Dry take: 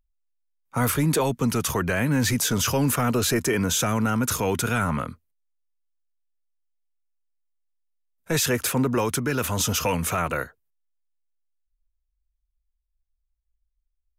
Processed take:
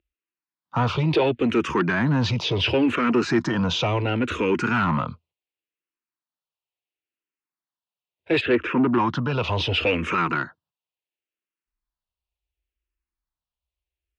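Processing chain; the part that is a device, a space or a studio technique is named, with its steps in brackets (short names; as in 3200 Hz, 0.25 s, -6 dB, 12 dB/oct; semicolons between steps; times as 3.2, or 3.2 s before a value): 8.4–9.42 LPF 2000 Hz -> 4600 Hz 12 dB/oct; barber-pole phaser into a guitar amplifier (endless phaser -0.71 Hz; soft clip -21 dBFS, distortion -17 dB; speaker cabinet 81–4200 Hz, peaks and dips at 340 Hz +8 dB, 970 Hz +4 dB, 2700 Hz +7 dB); gain +5.5 dB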